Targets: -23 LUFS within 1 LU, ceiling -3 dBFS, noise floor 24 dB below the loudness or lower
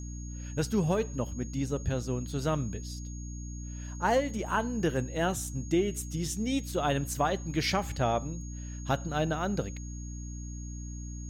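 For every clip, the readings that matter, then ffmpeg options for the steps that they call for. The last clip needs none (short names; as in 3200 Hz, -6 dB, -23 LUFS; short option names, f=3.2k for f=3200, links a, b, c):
hum 60 Hz; harmonics up to 300 Hz; hum level -37 dBFS; steady tone 6600 Hz; tone level -48 dBFS; loudness -32.0 LUFS; peak -15.5 dBFS; loudness target -23.0 LUFS
-> -af "bandreject=f=60:t=h:w=6,bandreject=f=120:t=h:w=6,bandreject=f=180:t=h:w=6,bandreject=f=240:t=h:w=6,bandreject=f=300:t=h:w=6"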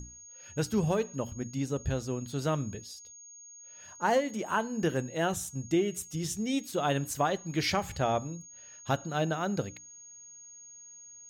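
hum none; steady tone 6600 Hz; tone level -48 dBFS
-> -af "bandreject=f=6.6k:w=30"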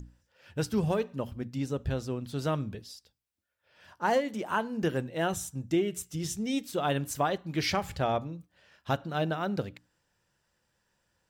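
steady tone none; loudness -31.5 LUFS; peak -16.0 dBFS; loudness target -23.0 LUFS
-> -af "volume=8.5dB"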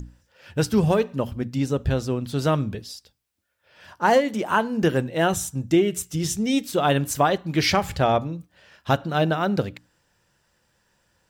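loudness -23.0 LUFS; peak -7.5 dBFS; noise floor -69 dBFS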